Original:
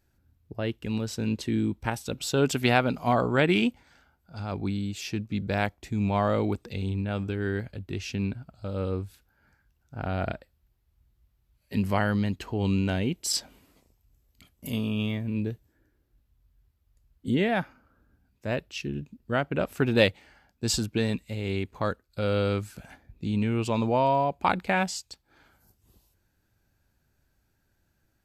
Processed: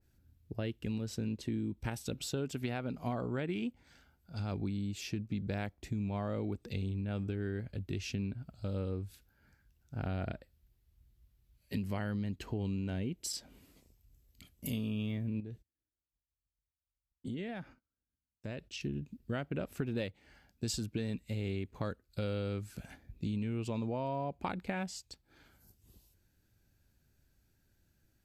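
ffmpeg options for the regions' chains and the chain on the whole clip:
-filter_complex "[0:a]asettb=1/sr,asplit=3[a][b][c];[a]atrim=end=15.404[d];[b]atrim=start=15.4:end=18.81,asetpts=PTS-STARTPTS,afade=t=in:d=0.004:c=qsin,afade=t=out:st=3.406:d=0.004:c=qsin,agate=range=-29dB:threshold=-58dB:ratio=16:release=100:detection=peak,lowpass=9.8k,acompressor=threshold=-36dB:ratio=5:attack=3.2:release=140:knee=1:detection=peak[e];[c]atrim=start=18.806[f];[d][e]acrossfade=d=0.004:c1=hsin:c2=qsin[g];[g][f]acrossfade=d=0.004:c1=qsin:c2=hsin,equalizer=f=970:t=o:w=1.8:g=-7.5,acompressor=threshold=-33dB:ratio=6,adynamicequalizer=threshold=0.00158:dfrequency=2100:dqfactor=0.7:tfrequency=2100:tqfactor=0.7:attack=5:release=100:ratio=0.375:range=4:mode=cutabove:tftype=highshelf"

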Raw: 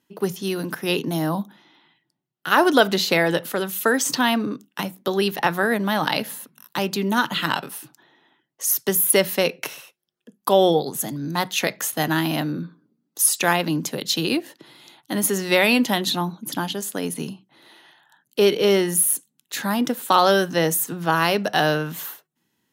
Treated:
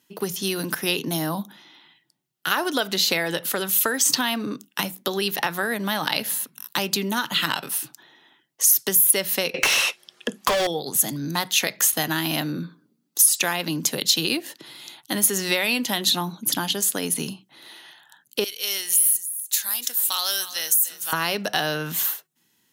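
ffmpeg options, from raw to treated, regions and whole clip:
-filter_complex "[0:a]asettb=1/sr,asplit=3[a][b][c];[a]atrim=end=9.544[d];[b]atrim=start=9.54:end=10.67,asetpts=PTS-STARTPTS,afade=t=in:d=0.004:c=qsin,afade=t=out:st=1.126:d=0.004:c=qsin,lowpass=11k,bandreject=f=1.5k:w=19,asplit=2[e][f];[f]highpass=f=720:p=1,volume=36dB,asoftclip=type=tanh:threshold=-4.5dB[g];[e][g]amix=inputs=2:normalize=0,lowpass=f=2.4k:p=1,volume=-6dB[h];[c]atrim=start=10.666[i];[d][h]acrossfade=d=0.004:c1=hsin:c2=qsin[j];[j][i]acrossfade=d=0.004:c1=qsin:c2=hsin,asettb=1/sr,asplit=3[k][l][m];[k]atrim=end=18.444[n];[l]atrim=start=18.44:end=21.13,asetpts=PTS-STARTPTS,afade=t=in:d=0.004:c=qsin,afade=t=out:st=2.686:d=0.004:c=qsin,aderivative,acompressor=threshold=-23dB:ratio=4:attack=3.2:release=140:knee=1:detection=peak,aecho=1:1:295:0.188,atrim=end_sample=118629[o];[m]atrim=start=21.126[p];[n][o]acrossfade=d=0.004:c1=hsin:c2=qsin[q];[q][p]acrossfade=d=0.004:c1=qsin:c2=hsin,acompressor=threshold=-24dB:ratio=4,highshelf=f=2.1k:g=10"

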